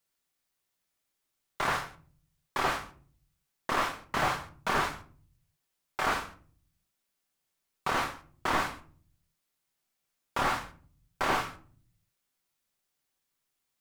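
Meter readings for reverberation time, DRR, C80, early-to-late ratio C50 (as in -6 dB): 0.45 s, 5.0 dB, 19.0 dB, 13.5 dB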